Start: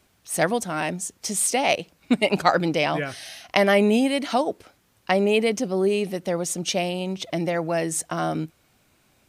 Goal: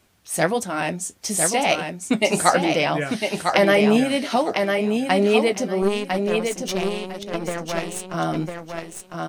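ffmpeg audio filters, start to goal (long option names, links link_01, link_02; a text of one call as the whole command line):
ffmpeg -i in.wav -filter_complex "[0:a]flanger=delay=8.9:depth=4.6:regen=-51:speed=1.5:shape=sinusoidal,asettb=1/sr,asplit=3[link_01][link_02][link_03];[link_01]atrim=end=5.824[link_04];[link_02]atrim=start=5.82:end=8.14,asetpts=PTS-STARTPTS,afade=type=in:duration=0.004:curve=qsin,afade=type=out:start_time=2.316:duration=0.004:curve=qsin,aeval=exprs='0.178*(cos(1*acos(clip(val(0)/0.178,-1,1)))-cos(1*PI/2))+0.0316*(cos(3*acos(clip(val(0)/0.178,-1,1)))-cos(3*PI/2))+0.02*(cos(4*acos(clip(val(0)/0.178,-1,1)))-cos(4*PI/2))+0.00398*(cos(6*acos(clip(val(0)/0.178,-1,1)))-cos(6*PI/2))+0.00355*(cos(7*acos(clip(val(0)/0.178,-1,1)))-cos(7*PI/2))':channel_layout=same[link_05];[link_03]atrim=start=8.136[link_06];[link_04][link_05]acrossfade=duration=0.004:curve1=hsin:curve2=qsin[link_07];[link_07][link_06]acrossfade=duration=0.004:curve1=qsin:curve2=hsin,aecho=1:1:1002|2004|3006:0.562|0.118|0.0248,volume=5.5dB" out.wav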